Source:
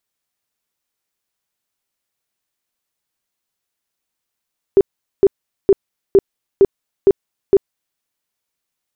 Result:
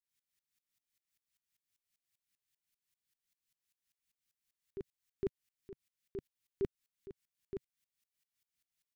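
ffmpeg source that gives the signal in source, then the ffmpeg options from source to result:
-f lavfi -i "aevalsrc='0.562*sin(2*PI*393*mod(t,0.46))*lt(mod(t,0.46),15/393)':d=3.22:s=44100"
-af "alimiter=limit=-12.5dB:level=0:latency=1:release=87,firequalizer=gain_entry='entry(140,0);entry(530,-18);entry(1900,0)':delay=0.05:min_phase=1,aeval=exprs='val(0)*pow(10,-23*if(lt(mod(-5.1*n/s,1),2*abs(-5.1)/1000),1-mod(-5.1*n/s,1)/(2*abs(-5.1)/1000),(mod(-5.1*n/s,1)-2*abs(-5.1)/1000)/(1-2*abs(-5.1)/1000))/20)':c=same"

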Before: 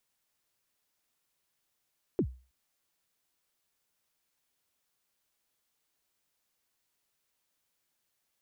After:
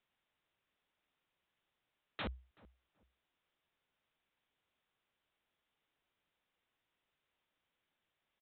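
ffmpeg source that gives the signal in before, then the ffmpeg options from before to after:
-f lavfi -i "aevalsrc='0.0891*pow(10,-3*t/0.35)*sin(2*PI*(440*0.074/log(63/440)*(exp(log(63/440)*min(t,0.074)/0.074)-1)+63*max(t-0.074,0)))':d=0.32:s=44100"
-filter_complex "[0:a]aresample=8000,aeval=exprs='(mod(56.2*val(0)+1,2)-1)/56.2':c=same,aresample=44100,asplit=2[a][b];[b]adelay=379,lowpass=f=1.1k:p=1,volume=-21.5dB,asplit=2[c][d];[d]adelay=379,lowpass=f=1.1k:p=1,volume=0.27[e];[a][c][e]amix=inputs=3:normalize=0"

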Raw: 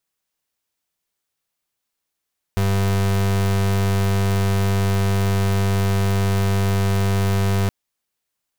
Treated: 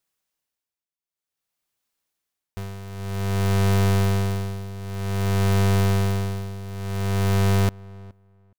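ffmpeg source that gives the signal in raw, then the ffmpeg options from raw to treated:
-f lavfi -i "aevalsrc='0.119*(2*lt(mod(97.9*t,1),0.35)-1)':d=5.12:s=44100"
-filter_complex "[0:a]tremolo=f=0.53:d=0.87,asplit=2[a][b];[b]adelay=419,lowpass=f=1.7k:p=1,volume=-22dB,asplit=2[c][d];[d]adelay=419,lowpass=f=1.7k:p=1,volume=0.17[e];[a][c][e]amix=inputs=3:normalize=0"

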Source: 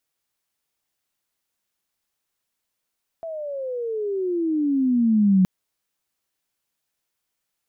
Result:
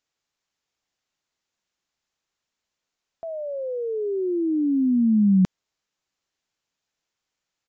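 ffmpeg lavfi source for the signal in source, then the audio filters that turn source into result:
-f lavfi -i "aevalsrc='pow(10,(-12.5+16.5*(t/2.22-1))/20)*sin(2*PI*669*2.22/(-22.5*log(2)/12)*(exp(-22.5*log(2)/12*t/2.22)-1))':d=2.22:s=44100"
-af "aresample=16000,aresample=44100"

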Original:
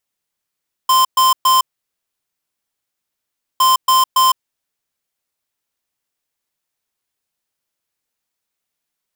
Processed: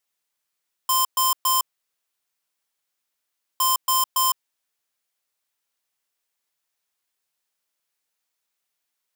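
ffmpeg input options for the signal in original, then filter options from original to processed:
-f lavfi -i "aevalsrc='0.266*(2*lt(mod(1040*t,1),0.5)-1)*clip(min(mod(mod(t,2.71),0.28),0.16-mod(mod(t,2.71),0.28))/0.005,0,1)*lt(mod(t,2.71),0.84)':d=5.42:s=44100"
-filter_complex "[0:a]lowshelf=f=340:g=-10.5,acrossover=split=6400[a][b];[a]asoftclip=type=tanh:threshold=-21.5dB[c];[c][b]amix=inputs=2:normalize=0"

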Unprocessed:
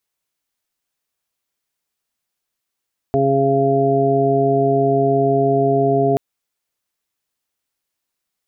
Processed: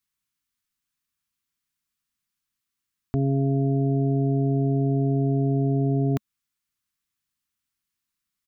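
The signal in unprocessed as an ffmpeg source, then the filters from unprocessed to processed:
-f lavfi -i "aevalsrc='0.0891*sin(2*PI*137*t)+0.0891*sin(2*PI*274*t)+0.15*sin(2*PI*411*t)+0.0188*sin(2*PI*548*t)+0.133*sin(2*PI*685*t)':d=3.03:s=44100"
-af "firequalizer=gain_entry='entry(210,0);entry(560,-22);entry(1100,-4)':delay=0.05:min_phase=1"

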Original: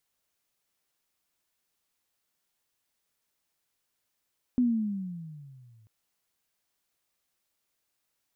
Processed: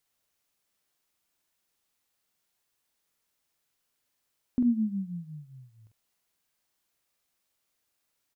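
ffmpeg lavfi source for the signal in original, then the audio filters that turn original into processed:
-f lavfi -i "aevalsrc='pow(10,(-19.5-36.5*t/1.29)/20)*sin(2*PI*253*1.29/(-15*log(2)/12)*(exp(-15*log(2)/12*t/1.29)-1))':d=1.29:s=44100"
-filter_complex "[0:a]asplit=2[a][b];[b]adelay=46,volume=-5.5dB[c];[a][c]amix=inputs=2:normalize=0"

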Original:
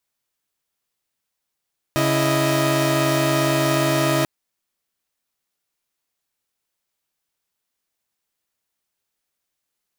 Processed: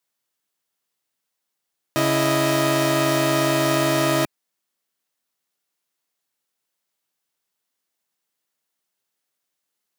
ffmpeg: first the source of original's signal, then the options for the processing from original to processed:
-f lavfi -i "aevalsrc='0.112*((2*mod(138.59*t,1)-1)+(2*mod(329.63*t,1)-1)+(2*mod(622.25*t,1)-1))':d=2.29:s=44100"
-af "highpass=140,bandreject=f=2.4k:w=28"

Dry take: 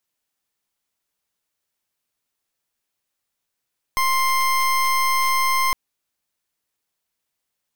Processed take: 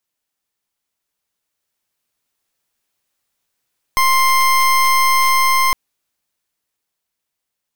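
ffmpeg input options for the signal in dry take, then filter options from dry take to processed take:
-f lavfi -i "aevalsrc='0.112*(2*lt(mod(1050*t,1),0.28)-1)':d=1.76:s=44100"
-af "dynaudnorm=f=290:g=13:m=6dB"

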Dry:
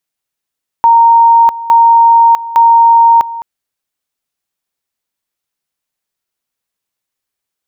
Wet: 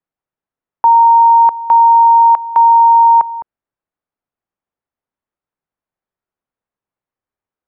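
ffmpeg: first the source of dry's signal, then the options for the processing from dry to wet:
-f lavfi -i "aevalsrc='pow(10,(-2.5-16.5*gte(mod(t,0.86),0.65))/20)*sin(2*PI*926*t)':d=2.58:s=44100"
-filter_complex "[0:a]lowpass=1.3k,acrossover=split=470|650[a][b][c];[a]acompressor=threshold=-39dB:ratio=6[d];[d][b][c]amix=inputs=3:normalize=0"

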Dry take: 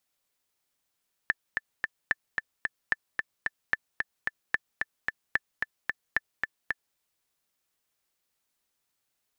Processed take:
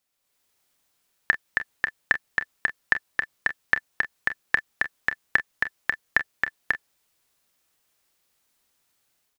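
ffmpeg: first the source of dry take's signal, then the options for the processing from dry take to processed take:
-f lavfi -i "aevalsrc='pow(10,(-10.5-4*gte(mod(t,3*60/222),60/222))/20)*sin(2*PI*1760*mod(t,60/222))*exp(-6.91*mod(t,60/222)/0.03)':d=5.67:s=44100"
-af "dynaudnorm=f=120:g=5:m=8dB,aecho=1:1:30|43:0.224|0.2"

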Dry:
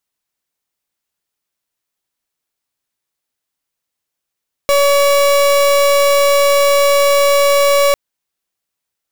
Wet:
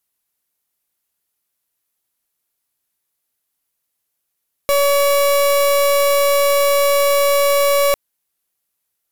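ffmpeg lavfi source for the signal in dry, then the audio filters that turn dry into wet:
-f lavfi -i "aevalsrc='0.282*(2*lt(mod(566*t,1),0.36)-1)':d=3.25:s=44100"
-af "equalizer=f=12k:t=o:w=0.62:g=11,asoftclip=type=tanh:threshold=-12.5dB"

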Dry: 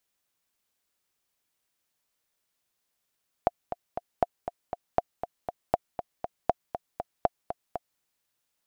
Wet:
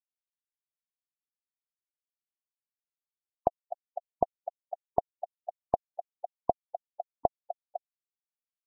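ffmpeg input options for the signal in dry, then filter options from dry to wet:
-f lavfi -i "aevalsrc='pow(10,(-8-10*gte(mod(t,3*60/238),60/238))/20)*sin(2*PI*702*mod(t,60/238))*exp(-6.91*mod(t,60/238)/0.03)':d=4.53:s=44100"
-af "afftfilt=real='re*gte(hypot(re,im),0.0891)':imag='im*gte(hypot(re,im),0.0891)':win_size=1024:overlap=0.75"

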